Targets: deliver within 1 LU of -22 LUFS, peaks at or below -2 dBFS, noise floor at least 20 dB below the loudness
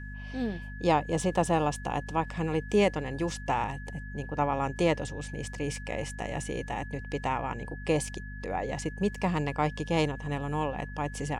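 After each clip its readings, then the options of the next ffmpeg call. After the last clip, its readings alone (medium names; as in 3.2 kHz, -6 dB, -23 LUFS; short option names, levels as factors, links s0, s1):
hum 50 Hz; highest harmonic 250 Hz; hum level -38 dBFS; steady tone 1.7 kHz; tone level -45 dBFS; loudness -31.0 LUFS; peak level -12.0 dBFS; loudness target -22.0 LUFS
-> -af "bandreject=f=50:t=h:w=4,bandreject=f=100:t=h:w=4,bandreject=f=150:t=h:w=4,bandreject=f=200:t=h:w=4,bandreject=f=250:t=h:w=4"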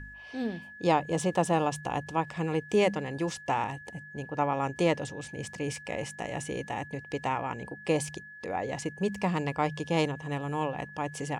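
hum not found; steady tone 1.7 kHz; tone level -45 dBFS
-> -af "bandreject=f=1700:w=30"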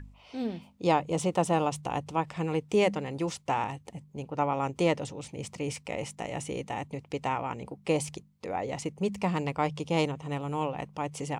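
steady tone not found; loudness -31.5 LUFS; peak level -12.0 dBFS; loudness target -22.0 LUFS
-> -af "volume=2.99"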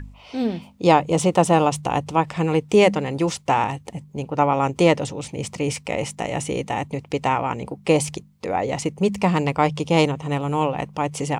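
loudness -22.0 LUFS; peak level -2.5 dBFS; noise floor -49 dBFS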